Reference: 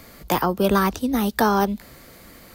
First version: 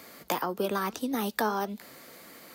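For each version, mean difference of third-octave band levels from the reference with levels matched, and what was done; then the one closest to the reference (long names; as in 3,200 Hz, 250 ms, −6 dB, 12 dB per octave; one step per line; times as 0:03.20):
4.5 dB: Bessel high-pass filter 270 Hz, order 2
downward compressor, threshold −24 dBFS, peak gain reduction 9 dB
flanger 1.7 Hz, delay 2.1 ms, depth 2.7 ms, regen +87%
level +2.5 dB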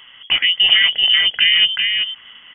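18.0 dB: hollow resonant body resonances 340/1,300 Hz, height 13 dB, ringing for 20 ms
on a send: single-tap delay 384 ms −4 dB
on the sum: voice inversion scrambler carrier 3,300 Hz
level −2 dB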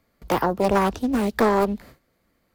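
7.5 dB: noise gate with hold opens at −34 dBFS
high-shelf EQ 3,300 Hz −7.5 dB
highs frequency-modulated by the lows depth 0.61 ms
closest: first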